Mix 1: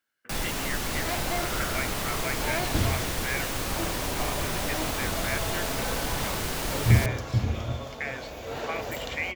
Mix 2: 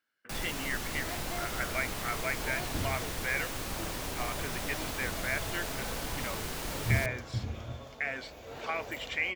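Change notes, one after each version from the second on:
first sound -6.5 dB; second sound -9.5 dB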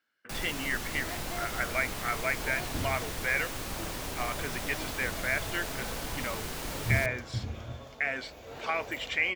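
speech +3.5 dB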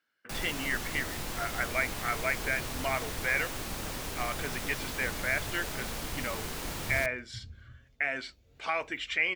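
second sound: add passive tone stack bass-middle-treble 10-0-1

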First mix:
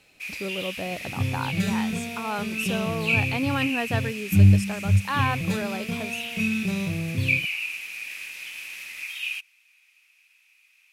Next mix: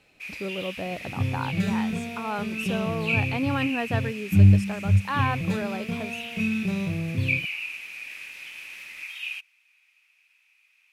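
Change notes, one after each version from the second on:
master: add high shelf 3700 Hz -9 dB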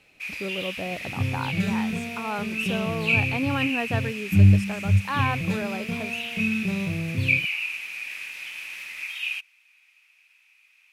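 first sound +4.0 dB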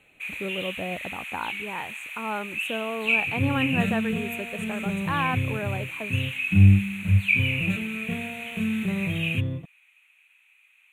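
second sound: entry +2.20 s; master: add Butterworth band-stop 5100 Hz, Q 1.5

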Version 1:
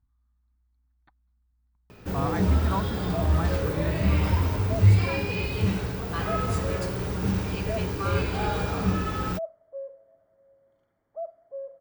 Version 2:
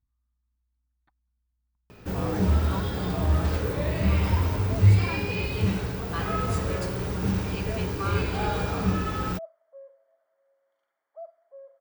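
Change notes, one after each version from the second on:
speech -7.5 dB; second sound: add HPF 920 Hz 12 dB/oct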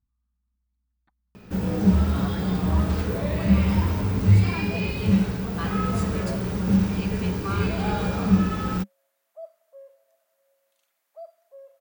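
first sound: entry -0.55 s; second sound: remove polynomial smoothing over 41 samples; master: add bell 200 Hz +10.5 dB 0.4 oct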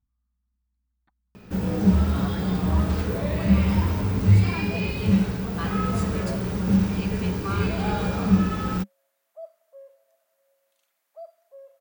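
none

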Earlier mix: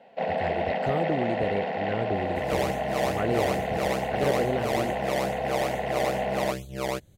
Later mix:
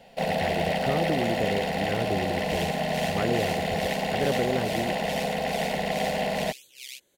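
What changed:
first sound: remove BPF 260–2000 Hz; second sound: add steep high-pass 2400 Hz 48 dB/oct

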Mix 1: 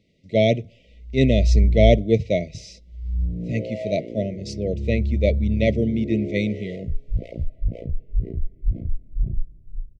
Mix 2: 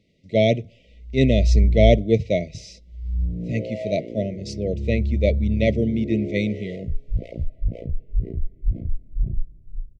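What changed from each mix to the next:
none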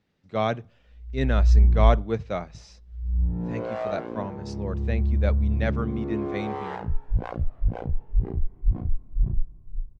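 speech -9.0 dB; master: remove brick-wall FIR band-stop 690–1900 Hz

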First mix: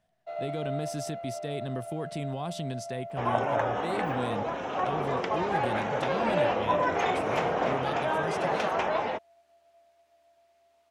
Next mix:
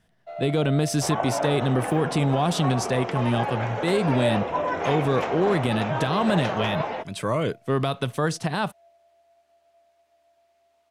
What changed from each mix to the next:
speech +12.0 dB; second sound: entry -2.15 s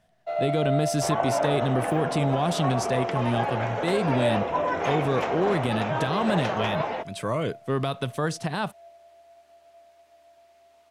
speech -5.0 dB; first sound +8.0 dB; reverb: on, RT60 0.85 s

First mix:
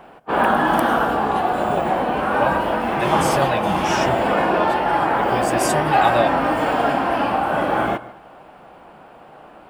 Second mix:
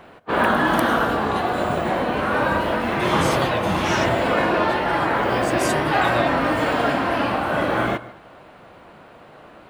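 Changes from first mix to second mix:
speech -6.0 dB; master: add thirty-one-band EQ 100 Hz +12 dB, 800 Hz -7 dB, 2000 Hz +4 dB, 4000 Hz +7 dB, 6300 Hz +4 dB

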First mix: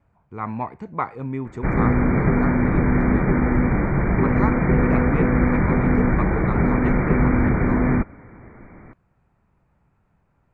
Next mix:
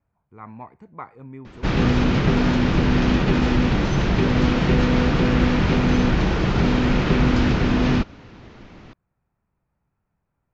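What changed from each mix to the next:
speech -11.0 dB; background: remove brick-wall FIR low-pass 2400 Hz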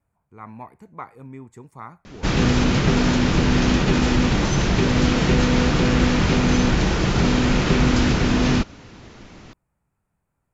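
background: entry +0.60 s; master: remove air absorption 160 m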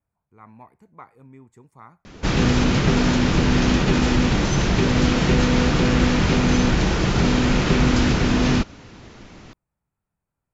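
speech -7.5 dB

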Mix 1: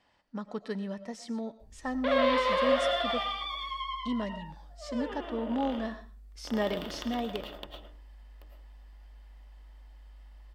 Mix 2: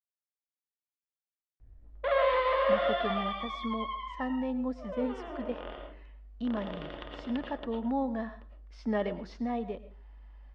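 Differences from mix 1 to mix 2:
speech: entry +2.35 s; master: add LPF 2400 Hz 12 dB/oct

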